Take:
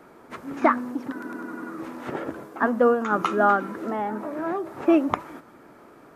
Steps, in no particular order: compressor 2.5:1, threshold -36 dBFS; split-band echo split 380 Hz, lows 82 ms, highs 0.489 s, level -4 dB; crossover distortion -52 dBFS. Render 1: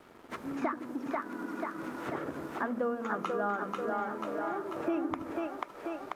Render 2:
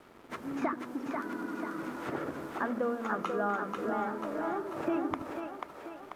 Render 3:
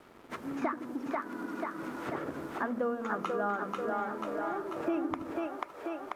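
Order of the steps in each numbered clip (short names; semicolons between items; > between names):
split-band echo > crossover distortion > compressor; crossover distortion > compressor > split-band echo; crossover distortion > split-band echo > compressor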